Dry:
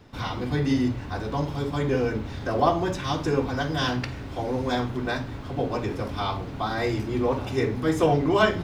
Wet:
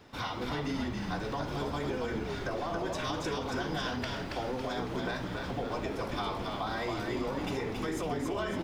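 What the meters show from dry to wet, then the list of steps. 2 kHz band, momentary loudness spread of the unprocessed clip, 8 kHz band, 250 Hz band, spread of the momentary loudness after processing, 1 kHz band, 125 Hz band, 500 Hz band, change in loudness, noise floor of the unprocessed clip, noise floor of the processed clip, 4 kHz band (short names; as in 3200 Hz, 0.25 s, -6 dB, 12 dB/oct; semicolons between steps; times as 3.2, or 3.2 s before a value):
-6.5 dB, 9 LU, -3.5 dB, -8.5 dB, 2 LU, -7.5 dB, -10.5 dB, -9.0 dB, -8.0 dB, -36 dBFS, -38 dBFS, -5.5 dB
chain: low shelf 230 Hz -10 dB; limiter -21 dBFS, peak gain reduction 11.5 dB; compressor, threshold -32 dBFS, peak gain reduction 7 dB; frequency-shifting echo 0.277 s, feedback 47%, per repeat -69 Hz, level -3.5 dB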